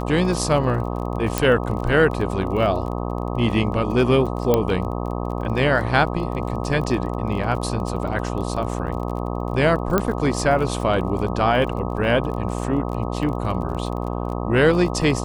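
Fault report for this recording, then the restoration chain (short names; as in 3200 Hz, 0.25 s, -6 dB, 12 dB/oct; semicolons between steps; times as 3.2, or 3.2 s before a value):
buzz 60 Hz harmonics 21 -26 dBFS
crackle 27/s -30 dBFS
1.38 pop
4.54 pop -5 dBFS
9.98 pop -5 dBFS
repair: de-click; de-hum 60 Hz, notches 21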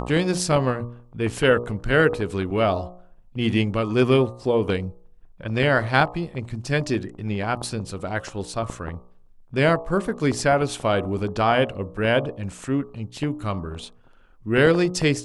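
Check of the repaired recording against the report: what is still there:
9.98 pop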